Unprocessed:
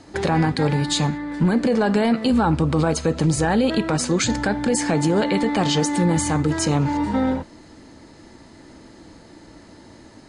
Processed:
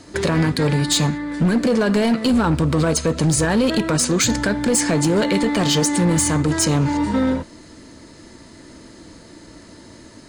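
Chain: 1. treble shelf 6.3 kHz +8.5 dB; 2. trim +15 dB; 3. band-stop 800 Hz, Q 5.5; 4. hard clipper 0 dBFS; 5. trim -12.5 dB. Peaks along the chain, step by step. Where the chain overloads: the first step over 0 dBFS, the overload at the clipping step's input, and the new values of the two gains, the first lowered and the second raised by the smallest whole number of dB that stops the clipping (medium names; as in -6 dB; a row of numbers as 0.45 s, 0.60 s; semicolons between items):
-7.0 dBFS, +8.0 dBFS, +8.0 dBFS, 0.0 dBFS, -12.5 dBFS; step 2, 8.0 dB; step 2 +7 dB, step 5 -4.5 dB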